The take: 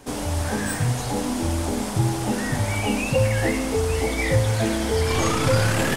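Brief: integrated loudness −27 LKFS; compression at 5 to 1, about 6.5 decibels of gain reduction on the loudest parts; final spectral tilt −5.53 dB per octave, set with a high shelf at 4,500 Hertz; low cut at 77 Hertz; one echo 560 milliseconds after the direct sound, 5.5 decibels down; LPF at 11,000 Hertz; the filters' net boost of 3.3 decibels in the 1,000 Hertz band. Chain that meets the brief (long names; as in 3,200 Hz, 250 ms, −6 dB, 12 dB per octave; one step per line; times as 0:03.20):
high-pass filter 77 Hz
low-pass filter 11,000 Hz
parametric band 1,000 Hz +4.5 dB
high-shelf EQ 4,500 Hz −5.5 dB
downward compressor 5 to 1, threshold −22 dBFS
single-tap delay 560 ms −5.5 dB
level −1.5 dB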